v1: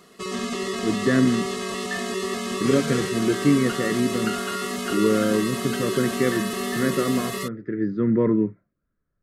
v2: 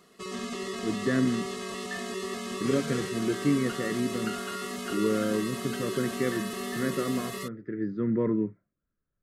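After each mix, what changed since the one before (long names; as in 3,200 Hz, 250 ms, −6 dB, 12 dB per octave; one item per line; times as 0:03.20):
speech −6.5 dB
background −7.0 dB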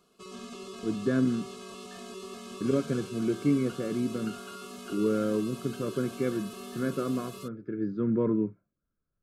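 background −7.5 dB
master: add Butterworth band-reject 1,900 Hz, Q 3.9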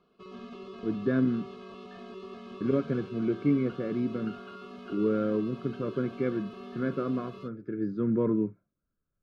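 background: add high-frequency loss of the air 300 metres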